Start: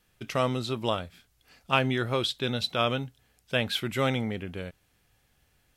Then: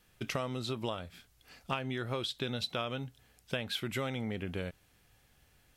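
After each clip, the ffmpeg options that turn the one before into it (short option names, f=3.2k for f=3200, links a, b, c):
-af "acompressor=threshold=-33dB:ratio=12,volume=1.5dB"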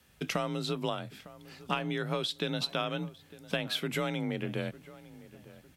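-filter_complex "[0:a]afreqshift=34,asplit=2[a][b];[b]adelay=904,lowpass=f=1.9k:p=1,volume=-18dB,asplit=2[c][d];[d]adelay=904,lowpass=f=1.9k:p=1,volume=0.41,asplit=2[e][f];[f]adelay=904,lowpass=f=1.9k:p=1,volume=0.41[g];[a][c][e][g]amix=inputs=4:normalize=0,volume=3dB"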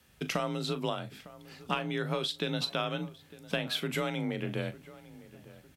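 -filter_complex "[0:a]asplit=2[a][b];[b]adelay=39,volume=-13dB[c];[a][c]amix=inputs=2:normalize=0"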